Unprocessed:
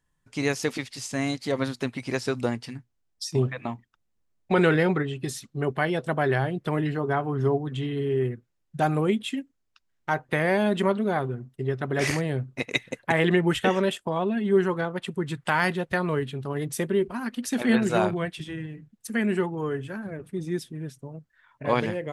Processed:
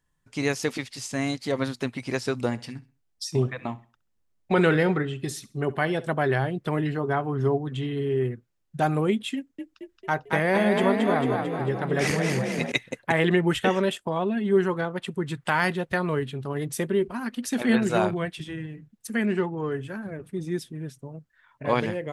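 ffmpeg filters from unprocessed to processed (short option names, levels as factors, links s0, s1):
-filter_complex "[0:a]asettb=1/sr,asplit=3[s0][s1][s2];[s0]atrim=end=2.334[s3];[s1]atrim=start=2.33:end=6.07,asetpts=PTS-STARTPTS,afade=t=in:d=0.004:c=qsin,afade=t=out:st=3.736:d=0.004:c=qsin,aecho=1:1:66|132|198:0.112|0.0348|0.0108,atrim=end_sample=164934[s4];[s2]atrim=start=6.066[s5];[s3][s4]acrossfade=d=0.004:c1=hsin:c2=qsin[s6];[s6][s5]acrossfade=d=0.004:c1=qsin:c2=hsin,asettb=1/sr,asplit=3[s7][s8][s9];[s7]atrim=end=9.364[s10];[s8]atrim=start=9.36:end=12.72,asetpts=PTS-STARTPTS,afade=t=in:d=0.004:c=qsin,afade=t=out:st=3.356:d=0.004:c=qsin,asplit=9[s11][s12][s13][s14][s15][s16][s17][s18][s19];[s12]adelay=223,afreqshift=37,volume=0.631[s20];[s13]adelay=446,afreqshift=74,volume=0.372[s21];[s14]adelay=669,afreqshift=111,volume=0.219[s22];[s15]adelay=892,afreqshift=148,volume=0.13[s23];[s16]adelay=1115,afreqshift=185,volume=0.0767[s24];[s17]adelay=1338,afreqshift=222,volume=0.0452[s25];[s18]adelay=1561,afreqshift=259,volume=0.0266[s26];[s19]adelay=1784,afreqshift=296,volume=0.0157[s27];[s11][s20][s21][s22][s23][s24][s25][s26][s27]amix=inputs=9:normalize=0,atrim=end_sample=148176[s28];[s9]atrim=start=12.716[s29];[s10][s28]acrossfade=d=0.004:c1=hsin:c2=qsin[s30];[s30][s29]acrossfade=d=0.004:c1=qsin:c2=hsin,asettb=1/sr,asplit=3[s31][s32][s33];[s31]atrim=end=19.254[s34];[s32]atrim=start=19.25:end=19.72,asetpts=PTS-STARTPTS,afade=t=in:d=0.004:c=qsin,afade=t=out:st=0.466:d=0.004:c=qsin,adynamicsmooth=sensitivity=5.5:basefreq=4500[s35];[s33]atrim=start=19.716[s36];[s34][s35]acrossfade=d=0.004:c1=hsin:c2=qsin[s37];[s37][s36]acrossfade=d=0.004:c1=qsin:c2=hsin"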